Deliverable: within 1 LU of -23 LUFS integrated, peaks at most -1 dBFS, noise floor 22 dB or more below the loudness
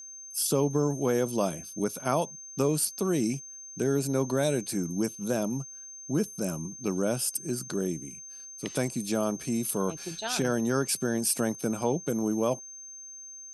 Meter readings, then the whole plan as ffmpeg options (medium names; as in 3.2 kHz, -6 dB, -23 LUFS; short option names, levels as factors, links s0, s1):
steady tone 6.3 kHz; tone level -42 dBFS; loudness -29.5 LUFS; peak level -13.0 dBFS; loudness target -23.0 LUFS
-> -af "bandreject=f=6300:w=30"
-af "volume=2.11"